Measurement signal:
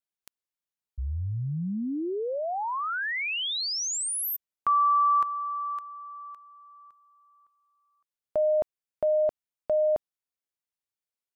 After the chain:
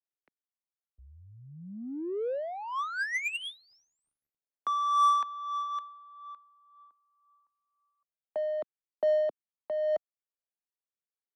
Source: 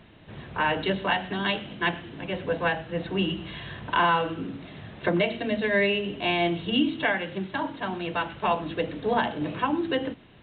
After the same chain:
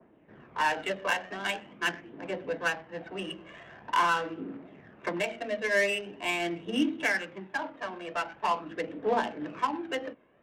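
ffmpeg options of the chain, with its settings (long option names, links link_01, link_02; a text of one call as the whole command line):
ffmpeg -i in.wav -filter_complex "[0:a]acrossover=split=230 2800:gain=0.1 1 0.112[link_01][link_02][link_03];[link_01][link_02][link_03]amix=inputs=3:normalize=0,acrossover=split=200|370|2000[link_04][link_05][link_06][link_07];[link_07]acontrast=76[link_08];[link_04][link_05][link_06][link_08]amix=inputs=4:normalize=0,lowpass=frequency=3800:poles=1,aphaser=in_gain=1:out_gain=1:delay=1.9:decay=0.43:speed=0.44:type=triangular,adynamicsmooth=sensitivity=3:basefreq=1300,adynamicequalizer=threshold=0.0158:dfrequency=1700:dqfactor=0.7:tfrequency=1700:tqfactor=0.7:attack=5:release=100:ratio=0.375:range=1.5:mode=boostabove:tftype=highshelf,volume=-5dB" out.wav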